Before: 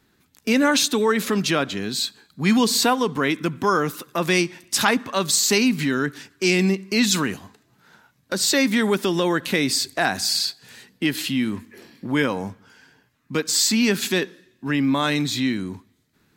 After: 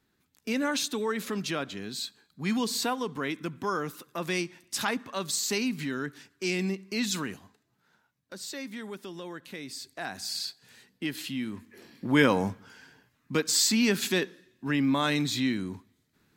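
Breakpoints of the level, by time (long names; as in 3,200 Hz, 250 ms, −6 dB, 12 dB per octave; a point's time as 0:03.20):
0:07.30 −10.5 dB
0:08.55 −19.5 dB
0:09.65 −19.5 dB
0:10.46 −10.5 dB
0:11.53 −10.5 dB
0:12.32 +1.5 dB
0:13.72 −5 dB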